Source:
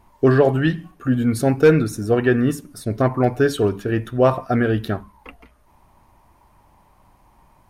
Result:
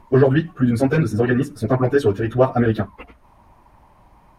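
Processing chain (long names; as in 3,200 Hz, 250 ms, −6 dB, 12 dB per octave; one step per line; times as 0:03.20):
in parallel at −2 dB: downward compressor 12 to 1, threshold −23 dBFS, peak gain reduction 15.5 dB
on the sum: time stretch by phase vocoder 0.57×
high-shelf EQ 5,300 Hz −10 dB
level +2 dB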